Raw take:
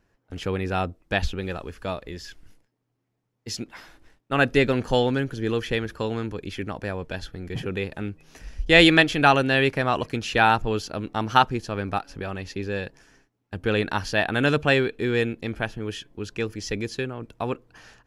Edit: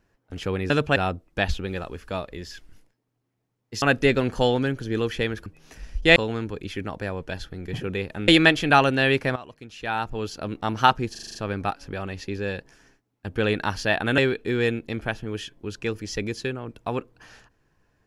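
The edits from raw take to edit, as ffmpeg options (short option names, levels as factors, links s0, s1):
-filter_complex "[0:a]asplit=15[s0][s1][s2][s3][s4][s5][s6][s7][s8][s9][s10][s11][s12][s13][s14];[s0]atrim=end=0.702[s15];[s1]atrim=start=14.458:end=14.722[s16];[s2]atrim=start=0.698:end=3.562[s17];[s3]atrim=start=4.338:end=5.982[s18];[s4]atrim=start=8.098:end=8.802[s19];[s5]atrim=start=5.978:end=8.102[s20];[s6]atrim=start=8.798:end=9.88,asetpts=PTS-STARTPTS,afade=t=out:st=1.078:d=0.004:c=hsin:silence=0.133352[s21];[s7]atrim=start=9.88:end=11.672,asetpts=PTS-STARTPTS,afade=t=in:d=1.14:c=qua:silence=0.133352[s22];[s8]atrim=start=11.628:end=11.672[s23];[s9]atrim=start=11.628:end=11.672[s24];[s10]atrim=start=11.628:end=11.672[s25];[s11]atrim=start=11.628:end=11.672[s26];[s12]atrim=start=11.628:end=11.672[s27];[s13]atrim=start=11.628:end=14.462[s28];[s14]atrim=start=14.718[s29];[s15][s16]acrossfade=d=0.004:c1=hsin:c2=hsin[s30];[s30][s17]acrossfade=d=0.004:c1=hsin:c2=hsin[s31];[s31][s18]acrossfade=d=0.004:c1=hsin:c2=hsin[s32];[s32][s19]acrossfade=d=0.004:c1=hsin:c2=hsin[s33];[s33][s20]acrossfade=d=0.004:c1=hsin:c2=hsin[s34];[s21][s22]concat=n=2:v=0:a=1[s35];[s34][s35]acrossfade=d=0.004:c1=hsin:c2=hsin[s36];[s36][s23]acrossfade=d=0.004:c1=hsin:c2=hsin[s37];[s37][s24]acrossfade=d=0.004:c1=hsin:c2=hsin[s38];[s38][s25]acrossfade=d=0.004:c1=hsin:c2=hsin[s39];[s39][s26]acrossfade=d=0.004:c1=hsin:c2=hsin[s40];[s40][s27]acrossfade=d=0.004:c1=hsin:c2=hsin[s41];[s41][s28]acrossfade=d=0.004:c1=hsin:c2=hsin[s42];[s42][s29]acrossfade=d=0.004:c1=hsin:c2=hsin"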